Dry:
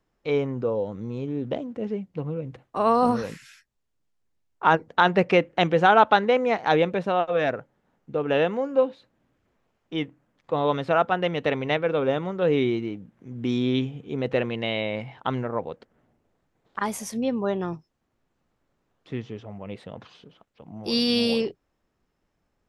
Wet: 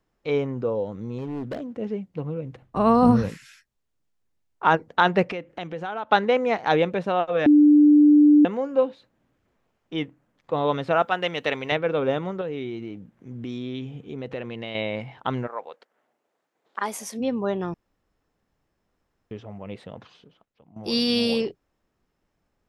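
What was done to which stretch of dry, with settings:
1.18–1.66 s: hard clipper -27 dBFS
2.62–3.29 s: tone controls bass +14 dB, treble -3 dB
5.32–6.12 s: compression 2.5:1, threshold -35 dBFS
7.46–8.45 s: bleep 296 Hz -10.5 dBFS
11.02–11.72 s: tilt EQ +2.5 dB/octave
12.41–14.75 s: compression 2.5:1, threshold -32 dBFS
15.46–17.19 s: high-pass 810 Hz -> 250 Hz
17.74–19.31 s: room tone
19.85–20.76 s: fade out, to -13.5 dB

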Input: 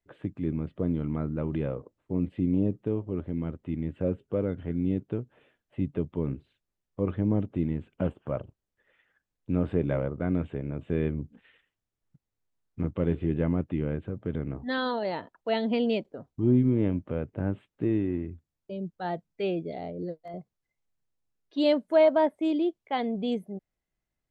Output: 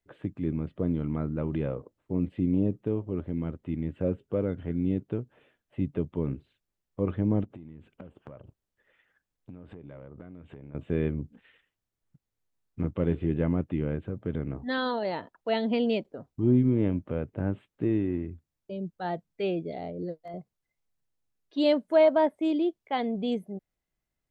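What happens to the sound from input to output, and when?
7.44–10.75 s: compression 16:1, threshold -40 dBFS

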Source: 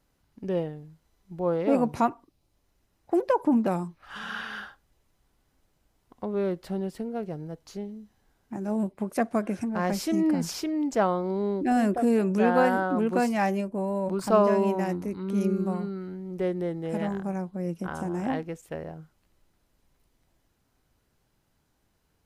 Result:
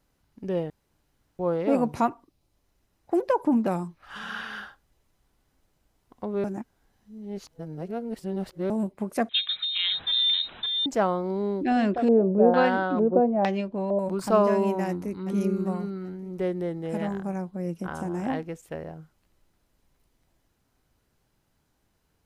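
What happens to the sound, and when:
0.70–1.39 s: room tone
6.44–8.70 s: reverse
9.29–10.86 s: frequency inversion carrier 3.9 kHz
11.63–13.99 s: LFO low-pass square 1.1 Hz 580–3700 Hz
14.87–15.27 s: echo throw 390 ms, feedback 50%, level -10.5 dB

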